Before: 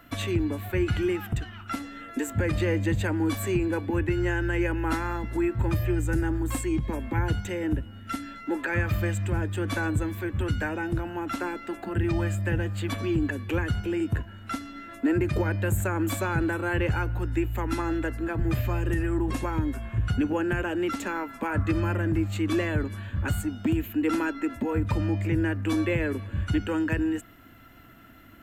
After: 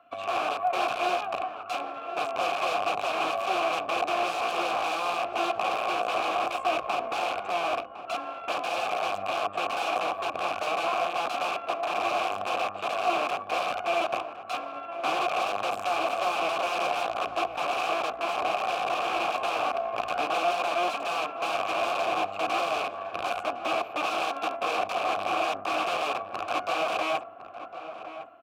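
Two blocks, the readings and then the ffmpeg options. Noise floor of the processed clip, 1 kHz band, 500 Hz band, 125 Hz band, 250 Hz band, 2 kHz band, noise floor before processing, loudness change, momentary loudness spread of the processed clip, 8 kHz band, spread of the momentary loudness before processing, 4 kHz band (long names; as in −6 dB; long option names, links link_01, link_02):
−41 dBFS, +10.5 dB, +2.0 dB, −28.0 dB, −15.0 dB, +1.0 dB, −45 dBFS, −0.5 dB, 6 LU, −2.0 dB, 6 LU, +8.5 dB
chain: -filter_complex "[0:a]equalizer=frequency=1200:width=0.45:gain=2.5,acrossover=split=340|1300[link_01][link_02][link_03];[link_02]dynaudnorm=framelen=130:gausssize=5:maxgain=15dB[link_04];[link_01][link_04][link_03]amix=inputs=3:normalize=0,aeval=exprs='0.75*(cos(1*acos(clip(val(0)/0.75,-1,1)))-cos(1*PI/2))+0.0299*(cos(5*acos(clip(val(0)/0.75,-1,1)))-cos(5*PI/2))+0.266*(cos(8*acos(clip(val(0)/0.75,-1,1)))-cos(8*PI/2))':channel_layout=same,aeval=exprs='(mod(3.76*val(0)+1,2)-1)/3.76':channel_layout=same,asplit=3[link_05][link_06][link_07];[link_05]bandpass=frequency=730:width_type=q:width=8,volume=0dB[link_08];[link_06]bandpass=frequency=1090:width_type=q:width=8,volume=-6dB[link_09];[link_07]bandpass=frequency=2440:width_type=q:width=8,volume=-9dB[link_10];[link_08][link_09][link_10]amix=inputs=3:normalize=0,asplit=2[link_11][link_12];[link_12]adelay=1058,lowpass=frequency=1600:poles=1,volume=-11dB,asplit=2[link_13][link_14];[link_14]adelay=1058,lowpass=frequency=1600:poles=1,volume=0.18[link_15];[link_11][link_13][link_15]amix=inputs=3:normalize=0,volume=3dB"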